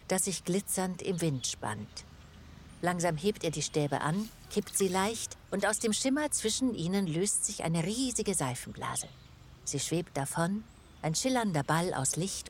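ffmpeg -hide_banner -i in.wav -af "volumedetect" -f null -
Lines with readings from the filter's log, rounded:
mean_volume: -32.4 dB
max_volume: -14.0 dB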